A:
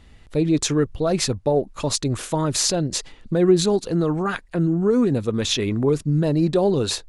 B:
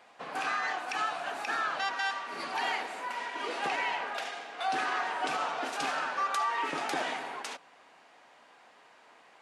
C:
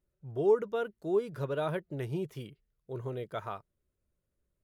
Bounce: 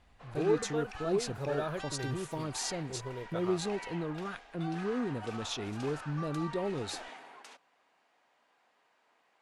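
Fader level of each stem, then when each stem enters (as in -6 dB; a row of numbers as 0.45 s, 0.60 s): -15.5 dB, -13.0 dB, -4.0 dB; 0.00 s, 0.00 s, 0.00 s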